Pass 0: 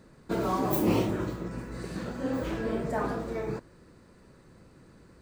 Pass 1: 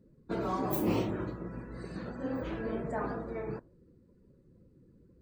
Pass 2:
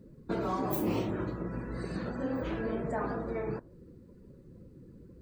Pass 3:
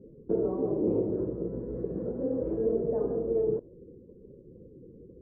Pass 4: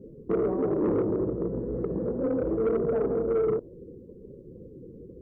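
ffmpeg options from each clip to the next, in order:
-af "afftdn=nr=20:nf=-51,volume=-4.5dB"
-af "acompressor=threshold=-44dB:ratio=2,volume=8.5dB"
-af "lowpass=f=450:t=q:w=4.1,volume=-2dB"
-af "asoftclip=type=tanh:threshold=-24.5dB,volume=5dB"

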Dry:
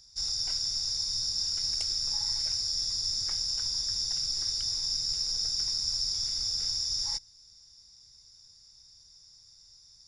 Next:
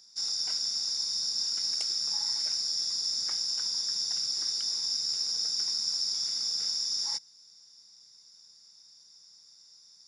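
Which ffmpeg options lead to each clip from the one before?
-af "highpass=f=180:w=0.5412,highpass=f=180:w=1.3066,equalizer=f=1.3k:w=1.5:g=2.5"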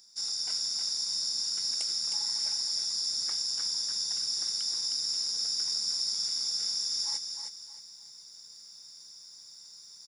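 -af "areverse,acompressor=mode=upward:threshold=-41dB:ratio=2.5,areverse,aexciter=amount=3:drive=2.4:freq=7.8k,aecho=1:1:312|624|936|1248:0.501|0.16|0.0513|0.0164,volume=-1.5dB"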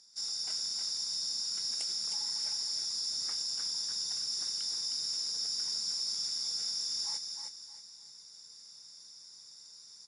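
-af "asoftclip=type=tanh:threshold=-23dB,volume=-2.5dB" -ar 24000 -c:a aac -b:a 48k

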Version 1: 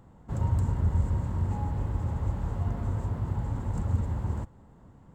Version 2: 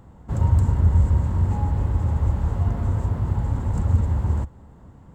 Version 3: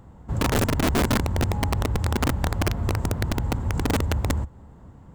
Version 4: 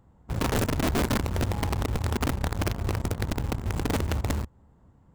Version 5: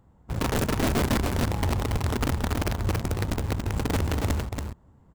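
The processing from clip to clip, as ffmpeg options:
-af "equalizer=f=70:w=2.7:g=6.5,volume=5.5dB"
-filter_complex "[0:a]asplit=2[a][b];[b]acompressor=threshold=-26dB:ratio=5,volume=-2dB[c];[a][c]amix=inputs=2:normalize=0,aeval=exprs='(mod(3.76*val(0)+1,2)-1)/3.76':c=same,volume=-5dB"
-filter_complex "[0:a]aeval=exprs='0.15*(cos(1*acos(clip(val(0)/0.15,-1,1)))-cos(1*PI/2))+0.00841*(cos(7*acos(clip(val(0)/0.15,-1,1)))-cos(7*PI/2))':c=same,asplit=2[a][b];[b]acrusher=bits=3:mix=0:aa=0.000001,volume=-7.5dB[c];[a][c]amix=inputs=2:normalize=0,volume=-7dB"
-af "aecho=1:1:281:0.596"

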